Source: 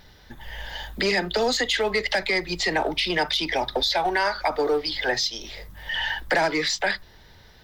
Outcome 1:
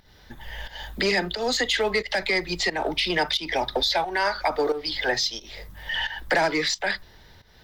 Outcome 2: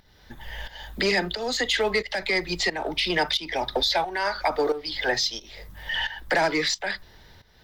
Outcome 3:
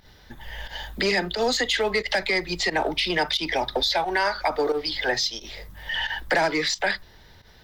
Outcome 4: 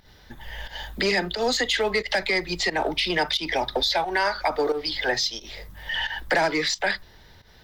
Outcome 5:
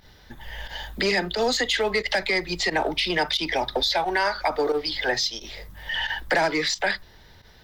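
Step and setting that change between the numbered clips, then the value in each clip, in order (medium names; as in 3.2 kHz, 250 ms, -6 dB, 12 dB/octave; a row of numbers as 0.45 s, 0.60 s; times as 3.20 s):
volume shaper, release: 261 ms, 479 ms, 94 ms, 150 ms, 62 ms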